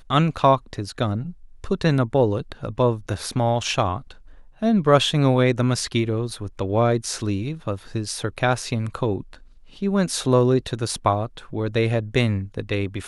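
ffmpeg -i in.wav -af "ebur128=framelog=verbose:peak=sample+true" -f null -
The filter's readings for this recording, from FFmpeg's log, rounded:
Integrated loudness:
  I:         -22.4 LUFS
  Threshold: -32.8 LUFS
Loudness range:
  LRA:         3.9 LU
  Threshold: -42.8 LUFS
  LRA low:   -25.0 LUFS
  LRA high:  -21.1 LUFS
Sample peak:
  Peak:       -2.7 dBFS
True peak:
  Peak:       -2.6 dBFS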